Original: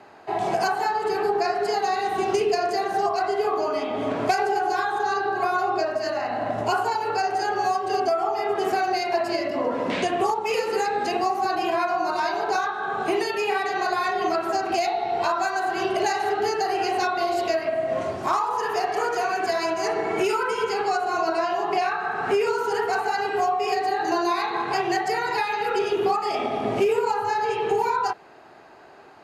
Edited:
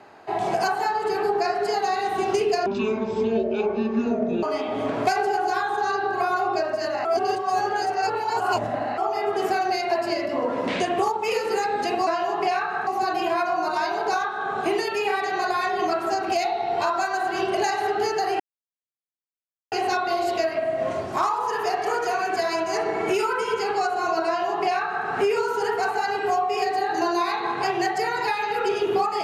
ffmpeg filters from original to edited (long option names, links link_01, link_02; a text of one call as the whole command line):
ffmpeg -i in.wav -filter_complex "[0:a]asplit=8[link_01][link_02][link_03][link_04][link_05][link_06][link_07][link_08];[link_01]atrim=end=2.664[link_09];[link_02]atrim=start=2.66:end=3.65,asetpts=PTS-STARTPTS,asetrate=24696,aresample=44100,atrim=end_sample=77962,asetpts=PTS-STARTPTS[link_10];[link_03]atrim=start=3.646:end=6.272[link_11];[link_04]atrim=start=6.268:end=8.202,asetpts=PTS-STARTPTS,areverse[link_12];[link_05]atrim=start=8.198:end=11.292[link_13];[link_06]atrim=start=21.368:end=22.172[link_14];[link_07]atrim=start=11.288:end=16.82,asetpts=PTS-STARTPTS,afade=type=out:start_time=5.528:duration=0.004:curve=hsin,apad=pad_dur=1.32[link_15];[link_08]atrim=start=16.82,asetpts=PTS-STARTPTS,afade=type=in:duration=0.004:curve=hsin[link_16];[link_09][link_10]acrossfade=duration=0.004:curve1=hsin:curve2=hsin[link_17];[link_17][link_11]acrossfade=duration=0.004:curve1=hsin:curve2=hsin[link_18];[link_18][link_12]acrossfade=duration=0.004:curve1=hsin:curve2=hsin[link_19];[link_19][link_13]acrossfade=duration=0.004:curve1=hsin:curve2=hsin[link_20];[link_20][link_14]acrossfade=duration=0.004:curve1=hsin:curve2=hsin[link_21];[link_15][link_16]concat=n=2:v=0:a=1[link_22];[link_21][link_22]acrossfade=duration=0.004:curve1=hsin:curve2=hsin" out.wav